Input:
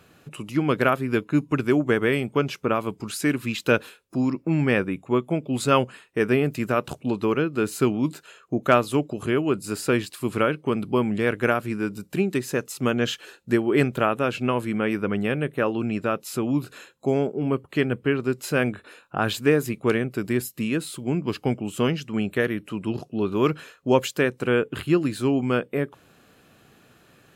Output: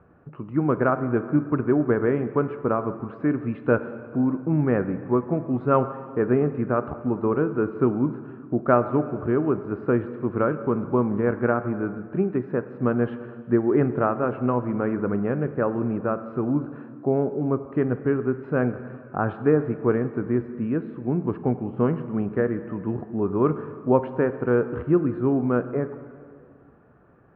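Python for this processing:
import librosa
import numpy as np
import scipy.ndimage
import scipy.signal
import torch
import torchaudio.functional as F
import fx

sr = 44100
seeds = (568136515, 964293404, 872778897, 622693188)

y = scipy.signal.sosfilt(scipy.signal.butter(4, 1400.0, 'lowpass', fs=sr, output='sos'), x)
y = fx.peak_eq(y, sr, hz=65.0, db=6.0, octaves=0.77)
y = fx.rev_plate(y, sr, seeds[0], rt60_s=2.2, hf_ratio=0.85, predelay_ms=0, drr_db=10.5)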